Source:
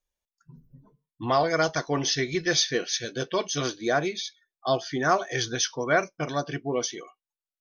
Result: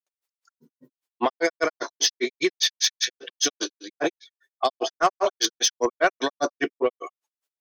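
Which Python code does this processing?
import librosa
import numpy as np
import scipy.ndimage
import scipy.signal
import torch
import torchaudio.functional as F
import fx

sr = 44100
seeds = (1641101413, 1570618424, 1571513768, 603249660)

p1 = scipy.signal.sosfilt(scipy.signal.butter(4, 300.0, 'highpass', fs=sr, output='sos'), x)
p2 = fx.over_compress(p1, sr, threshold_db=-31.0, ratio=-1.0)
p3 = p1 + F.gain(torch.from_numpy(p2), 2.0).numpy()
p4 = fx.granulator(p3, sr, seeds[0], grain_ms=100.0, per_s=5.0, spray_ms=100.0, spread_st=0)
p5 = 10.0 ** (-15.5 / 20.0) * np.tanh(p4 / 10.0 ** (-15.5 / 20.0))
y = F.gain(torch.from_numpy(p5), 5.5).numpy()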